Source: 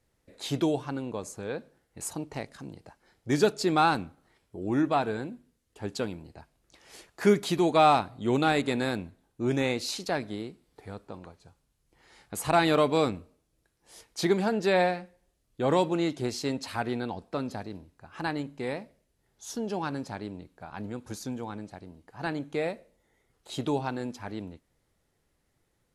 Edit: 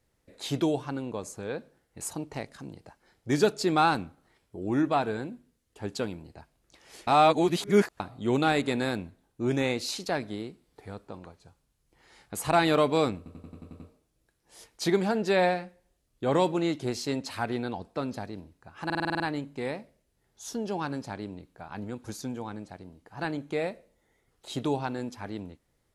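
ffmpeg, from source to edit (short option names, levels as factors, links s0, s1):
-filter_complex "[0:a]asplit=17[s0][s1][s2][s3][s4][s5][s6][s7][s8][s9][s10][s11][s12][s13][s14][s15][s16];[s0]atrim=end=7.072[s17];[s1]atrim=start=7.068:end=8.002,asetpts=PTS-STARTPTS,areverse[s18];[s2]atrim=start=7.998:end=13.262[s19];[s3]atrim=start=13.168:end=13.262[s20];[s4]atrim=start=13.168:end=13.262[s21];[s5]atrim=start=13.168:end=13.262[s22];[s6]atrim=start=13.168:end=13.262[s23];[s7]atrim=start=13.168:end=13.262[s24];[s8]atrim=start=13.168:end=13.262[s25];[s9]atrim=start=13.168:end=18.272[s26];[s10]atrim=start=18.218:end=18.272[s27];[s11]atrim=start=18.218:end=18.272[s28];[s12]atrim=start=18.218:end=18.272[s29];[s13]atrim=start=18.218:end=18.272[s30];[s14]atrim=start=18.218:end=18.272[s31];[s15]atrim=start=18.218:end=18.272[s32];[s16]atrim=start=18.218[s33];[s17][s18]acrossfade=d=0.004:c1=hsin:c2=hsin[s34];[s34][s19]acrossfade=d=0.004:c1=hsin:c2=hsin[s35];[s35][s20]acrossfade=d=0.004:c1=hsin:c2=hsin[s36];[s36][s21]acrossfade=d=0.004:c1=hsin:c2=hsin[s37];[s37][s22]acrossfade=d=0.004:c1=hsin:c2=hsin[s38];[s38][s23]acrossfade=d=0.004:c1=hsin:c2=hsin[s39];[s39][s24]acrossfade=d=0.004:c1=hsin:c2=hsin[s40];[s40][s25]acrossfade=d=0.004:c1=hsin:c2=hsin[s41];[s41][s26]acrossfade=d=0.004:c1=hsin:c2=hsin[s42];[s42][s27]acrossfade=d=0.004:c1=hsin:c2=hsin[s43];[s43][s28]acrossfade=d=0.004:c1=hsin:c2=hsin[s44];[s44][s29]acrossfade=d=0.004:c1=hsin:c2=hsin[s45];[s45][s30]acrossfade=d=0.004:c1=hsin:c2=hsin[s46];[s46][s31]acrossfade=d=0.004:c1=hsin:c2=hsin[s47];[s47][s32]acrossfade=d=0.004:c1=hsin:c2=hsin[s48];[s48][s33]acrossfade=d=0.004:c1=hsin:c2=hsin"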